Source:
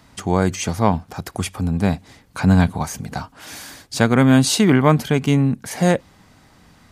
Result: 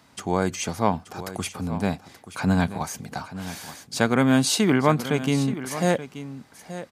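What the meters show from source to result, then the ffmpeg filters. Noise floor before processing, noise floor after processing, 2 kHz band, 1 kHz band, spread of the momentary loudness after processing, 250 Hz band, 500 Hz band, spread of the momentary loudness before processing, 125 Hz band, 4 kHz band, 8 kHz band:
-52 dBFS, -54 dBFS, -3.5 dB, -3.5 dB, 18 LU, -6.0 dB, -4.0 dB, 17 LU, -8.5 dB, -3.5 dB, -3.5 dB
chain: -filter_complex "[0:a]highpass=f=200:p=1,bandreject=f=1.9k:w=29,asplit=2[a][b];[b]aecho=0:1:879:0.211[c];[a][c]amix=inputs=2:normalize=0,volume=-3.5dB"

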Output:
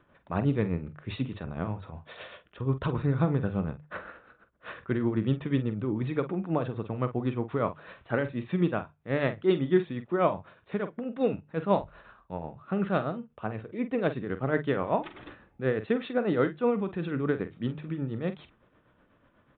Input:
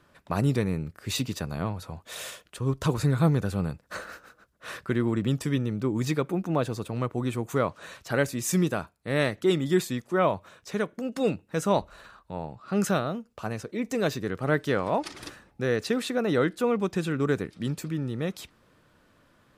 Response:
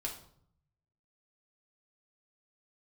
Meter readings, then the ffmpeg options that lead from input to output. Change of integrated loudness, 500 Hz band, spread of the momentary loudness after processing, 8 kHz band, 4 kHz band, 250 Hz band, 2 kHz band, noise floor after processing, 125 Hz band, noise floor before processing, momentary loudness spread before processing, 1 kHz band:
-2.0 dB, -1.5 dB, 14 LU, under -40 dB, -9.5 dB, -1.5 dB, -4.0 dB, -66 dBFS, -2.5 dB, -63 dBFS, 13 LU, -2.0 dB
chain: -filter_complex "[0:a]aemphasis=mode=reproduction:type=75fm,bandreject=f=50:t=h:w=6,bandreject=f=100:t=h:w=6,bandreject=f=150:t=h:w=6,tremolo=f=8.1:d=0.57,asplit=2[a][b];[b]adelay=46,volume=-11.5dB[c];[a][c]amix=inputs=2:normalize=0,aresample=8000,aresample=44100"

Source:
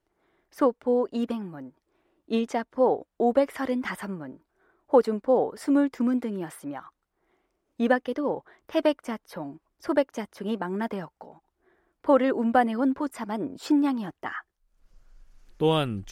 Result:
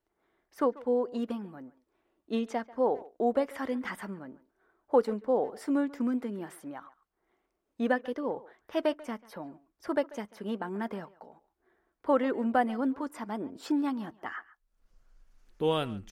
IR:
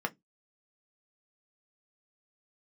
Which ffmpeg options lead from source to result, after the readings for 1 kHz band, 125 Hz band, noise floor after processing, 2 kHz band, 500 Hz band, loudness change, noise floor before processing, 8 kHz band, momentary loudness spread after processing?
-5.0 dB, -7.5 dB, -82 dBFS, -4.5 dB, -5.0 dB, -5.5 dB, -80 dBFS, n/a, 15 LU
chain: -filter_complex "[0:a]asplit=2[a][b];[b]adelay=140,highpass=300,lowpass=3.4k,asoftclip=type=hard:threshold=-15.5dB,volume=-19dB[c];[a][c]amix=inputs=2:normalize=0,asplit=2[d][e];[1:a]atrim=start_sample=2205[f];[e][f]afir=irnorm=-1:irlink=0,volume=-18dB[g];[d][g]amix=inputs=2:normalize=0,volume=-6.5dB"

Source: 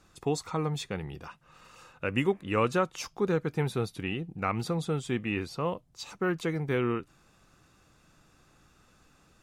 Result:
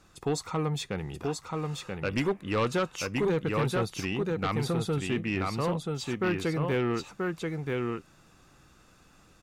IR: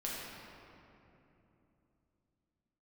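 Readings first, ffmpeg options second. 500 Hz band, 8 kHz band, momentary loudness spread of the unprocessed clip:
+1.5 dB, +3.0 dB, 9 LU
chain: -af "aecho=1:1:982:0.631,aeval=exprs='0.237*sin(PI/2*2.24*val(0)/0.237)':c=same,volume=-9dB"

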